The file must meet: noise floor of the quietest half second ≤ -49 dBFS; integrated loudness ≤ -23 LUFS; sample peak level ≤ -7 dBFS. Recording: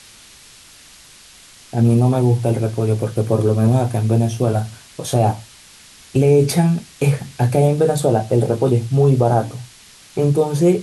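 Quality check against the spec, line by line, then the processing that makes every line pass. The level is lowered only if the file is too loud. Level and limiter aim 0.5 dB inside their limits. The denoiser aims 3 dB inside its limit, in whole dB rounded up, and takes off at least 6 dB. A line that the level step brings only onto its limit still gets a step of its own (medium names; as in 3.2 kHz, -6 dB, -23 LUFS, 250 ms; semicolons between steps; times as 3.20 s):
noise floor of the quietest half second -45 dBFS: fail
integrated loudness -17.5 LUFS: fail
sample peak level -5.0 dBFS: fail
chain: trim -6 dB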